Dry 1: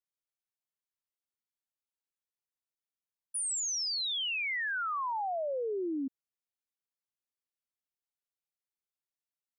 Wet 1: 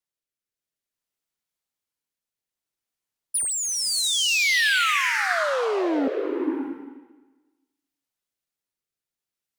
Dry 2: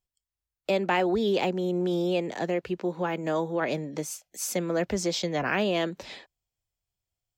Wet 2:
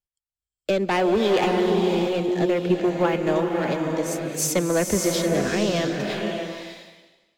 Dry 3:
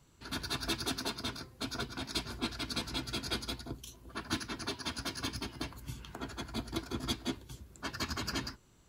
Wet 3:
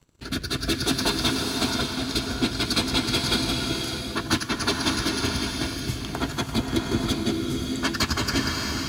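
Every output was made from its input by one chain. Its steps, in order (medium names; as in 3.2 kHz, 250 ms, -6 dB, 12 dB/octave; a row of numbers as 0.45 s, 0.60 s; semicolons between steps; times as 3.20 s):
waveshaping leveller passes 2; transient shaper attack +3 dB, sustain -5 dB; rotary cabinet horn 0.6 Hz; swelling reverb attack 610 ms, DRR 2 dB; peak normalisation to -9 dBFS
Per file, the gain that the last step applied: +11.0 dB, -0.5 dB, +5.5 dB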